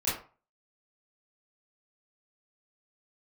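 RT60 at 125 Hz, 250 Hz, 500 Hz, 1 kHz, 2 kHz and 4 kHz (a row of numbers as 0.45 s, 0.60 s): 0.40 s, 0.35 s, 0.35 s, 0.40 s, 0.30 s, 0.25 s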